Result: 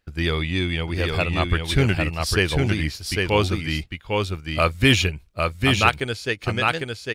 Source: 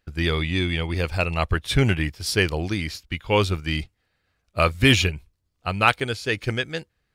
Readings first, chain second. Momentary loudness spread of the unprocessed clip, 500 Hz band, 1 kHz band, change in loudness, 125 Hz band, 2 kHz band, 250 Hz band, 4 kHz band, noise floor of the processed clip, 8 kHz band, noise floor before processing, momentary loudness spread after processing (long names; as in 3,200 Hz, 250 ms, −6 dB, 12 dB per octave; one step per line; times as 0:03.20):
12 LU, +1.5 dB, +1.5 dB, +1.0 dB, +1.5 dB, +1.5 dB, +1.5 dB, +1.5 dB, −50 dBFS, +1.5 dB, −74 dBFS, 9 LU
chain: single-tap delay 802 ms −3.5 dB
every ending faded ahead of time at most 470 dB per second